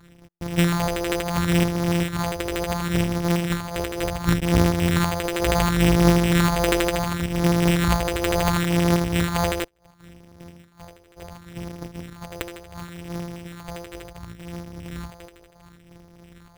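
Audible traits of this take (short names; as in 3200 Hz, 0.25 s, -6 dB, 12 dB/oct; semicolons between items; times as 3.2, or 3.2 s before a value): a buzz of ramps at a fixed pitch in blocks of 256 samples; phasing stages 4, 0.7 Hz, lowest notch 180–2000 Hz; aliases and images of a low sample rate 5500 Hz, jitter 0%; noise-modulated level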